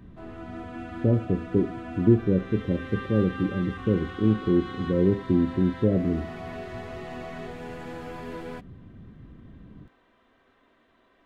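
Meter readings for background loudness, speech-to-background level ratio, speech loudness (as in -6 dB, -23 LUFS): -39.0 LUFS, 14.0 dB, -25.0 LUFS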